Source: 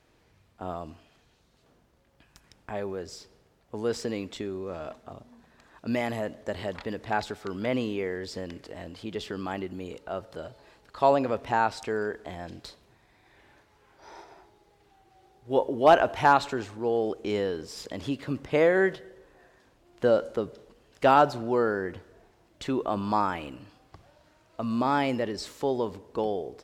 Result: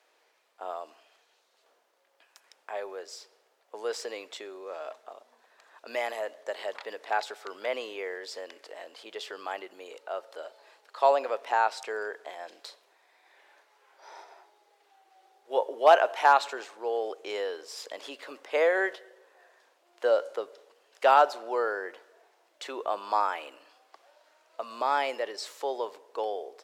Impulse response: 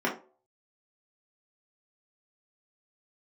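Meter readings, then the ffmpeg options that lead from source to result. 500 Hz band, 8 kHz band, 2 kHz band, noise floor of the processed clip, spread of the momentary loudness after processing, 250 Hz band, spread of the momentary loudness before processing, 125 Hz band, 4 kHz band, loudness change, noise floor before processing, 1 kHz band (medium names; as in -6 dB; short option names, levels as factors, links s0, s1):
-2.0 dB, 0.0 dB, 0.0 dB, -69 dBFS, 22 LU, -16.0 dB, 19 LU, under -35 dB, 0.0 dB, -1.5 dB, -64 dBFS, 0.0 dB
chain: -af "highpass=f=480:w=0.5412,highpass=f=480:w=1.3066"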